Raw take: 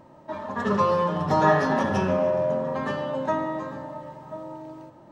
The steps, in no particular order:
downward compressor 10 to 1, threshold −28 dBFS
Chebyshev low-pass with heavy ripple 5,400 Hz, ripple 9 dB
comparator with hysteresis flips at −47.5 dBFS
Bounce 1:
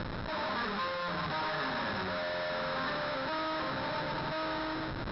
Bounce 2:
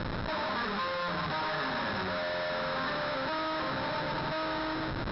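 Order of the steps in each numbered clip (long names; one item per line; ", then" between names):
comparator with hysteresis, then downward compressor, then Chebyshev low-pass with heavy ripple
comparator with hysteresis, then Chebyshev low-pass with heavy ripple, then downward compressor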